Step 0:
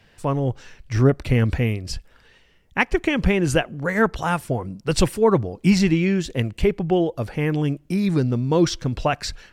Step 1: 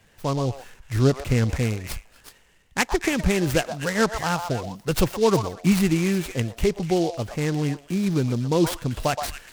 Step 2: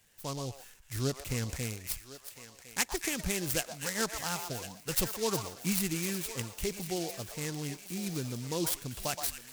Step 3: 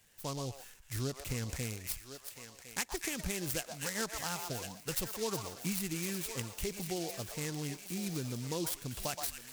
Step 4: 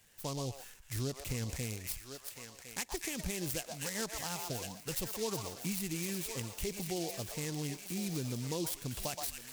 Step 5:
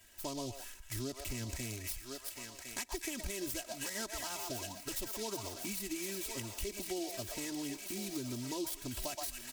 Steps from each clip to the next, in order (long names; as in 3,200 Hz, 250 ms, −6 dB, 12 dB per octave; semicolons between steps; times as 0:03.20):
echo through a band-pass that steps 122 ms, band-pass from 860 Hz, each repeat 1.4 octaves, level −4 dB; short delay modulated by noise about 4,300 Hz, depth 0.043 ms; level −2.5 dB
first-order pre-emphasis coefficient 0.8; feedback echo with a high-pass in the loop 1,057 ms, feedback 57%, high-pass 560 Hz, level −12 dB
downward compressor 2.5 to 1, threshold −34 dBFS, peak gain reduction 7.5 dB
dynamic equaliser 1,400 Hz, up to −5 dB, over −56 dBFS, Q 2; in parallel at +0.5 dB: brickwall limiter −29 dBFS, peak gain reduction 11 dB; on the sum: level −5 dB
comb filter 3.1 ms, depth 93%; downward compressor 2 to 1, threshold −41 dBFS, peak gain reduction 7 dB; level +1 dB